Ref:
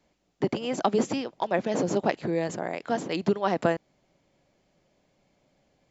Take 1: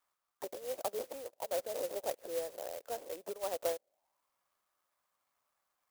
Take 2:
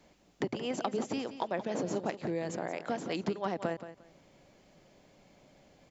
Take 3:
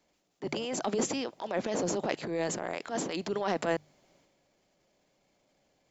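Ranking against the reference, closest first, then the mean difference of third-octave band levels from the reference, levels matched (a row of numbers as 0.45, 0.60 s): 2, 3, 1; 3.0, 4.0, 12.0 dB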